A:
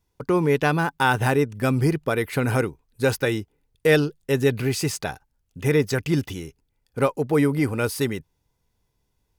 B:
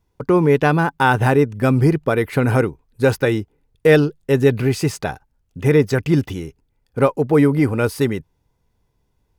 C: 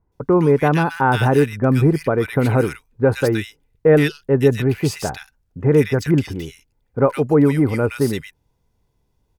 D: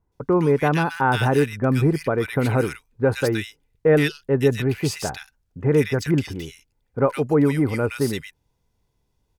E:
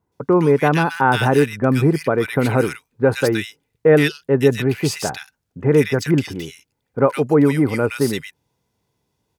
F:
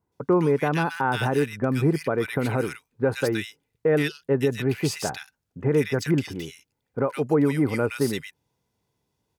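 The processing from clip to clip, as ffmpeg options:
-af "highshelf=f=2.4k:g=-8.5,volume=6dB"
-filter_complex "[0:a]acrossover=split=1700[a][b];[b]adelay=120[c];[a][c]amix=inputs=2:normalize=0"
-af "equalizer=f=5.1k:w=0.31:g=4,volume=-4dB"
-af "highpass=120,volume=4dB"
-af "alimiter=limit=-7dB:level=0:latency=1:release=270,volume=-4.5dB"

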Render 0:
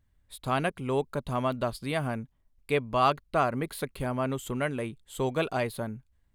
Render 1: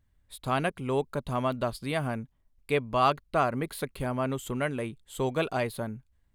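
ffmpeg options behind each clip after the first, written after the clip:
-af anull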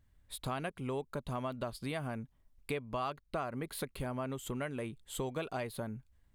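-af "acompressor=threshold=-37dB:ratio=4,volume=1dB"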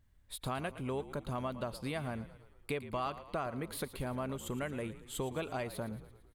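-filter_complex "[0:a]asplit=7[a][b][c][d][e][f][g];[b]adelay=113,afreqshift=-50,volume=-14.5dB[h];[c]adelay=226,afreqshift=-100,volume=-19.4dB[i];[d]adelay=339,afreqshift=-150,volume=-24.3dB[j];[e]adelay=452,afreqshift=-200,volume=-29.1dB[k];[f]adelay=565,afreqshift=-250,volume=-34dB[l];[g]adelay=678,afreqshift=-300,volume=-38.9dB[m];[a][h][i][j][k][l][m]amix=inputs=7:normalize=0"

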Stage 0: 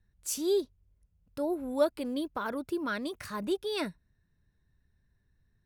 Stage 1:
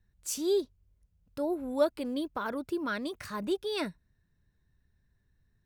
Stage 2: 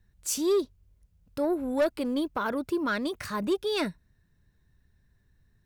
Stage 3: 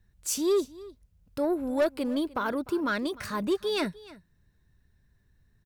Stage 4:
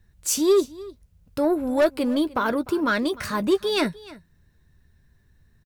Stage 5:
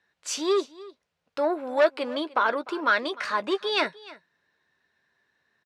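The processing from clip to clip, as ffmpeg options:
-af "equalizer=f=11k:t=o:w=0.33:g=-4.5"
-af "asoftclip=type=tanh:threshold=-24dB,volume=5.5dB"
-af "aecho=1:1:301:0.1"
-filter_complex "[0:a]asplit=2[a][b];[b]adelay=13,volume=-12.5dB[c];[a][c]amix=inputs=2:normalize=0,volume=6dB"
-af "highpass=610,lowpass=4k,volume=2.5dB"

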